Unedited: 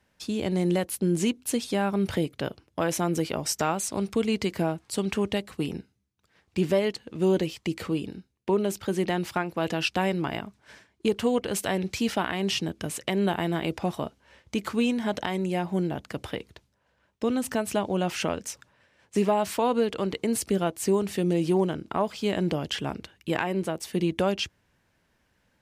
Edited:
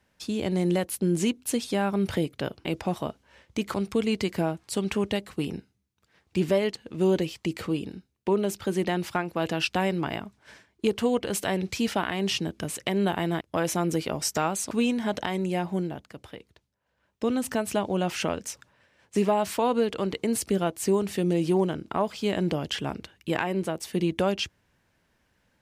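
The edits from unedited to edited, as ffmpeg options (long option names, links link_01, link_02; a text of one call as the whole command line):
ffmpeg -i in.wav -filter_complex "[0:a]asplit=7[link_01][link_02][link_03][link_04][link_05][link_06][link_07];[link_01]atrim=end=2.652[link_08];[link_02]atrim=start=13.618:end=14.712[link_09];[link_03]atrim=start=3.948:end=13.622[link_10];[link_04]atrim=start=2.648:end=3.952[link_11];[link_05]atrim=start=14.708:end=16.11,asetpts=PTS-STARTPTS,afade=type=out:start_time=0.952:duration=0.45:silence=0.334965[link_12];[link_06]atrim=start=16.11:end=16.8,asetpts=PTS-STARTPTS,volume=-9.5dB[link_13];[link_07]atrim=start=16.8,asetpts=PTS-STARTPTS,afade=type=in:duration=0.45:silence=0.334965[link_14];[link_08][link_09]acrossfade=duration=0.004:curve1=hsin:curve2=hsin[link_15];[link_15][link_10]acrossfade=duration=0.004:curve1=hsin:curve2=hsin[link_16];[link_16][link_11]acrossfade=duration=0.004:curve1=hsin:curve2=hsin[link_17];[link_12][link_13][link_14]concat=n=3:v=0:a=1[link_18];[link_17][link_18]acrossfade=duration=0.004:curve1=hsin:curve2=hsin" out.wav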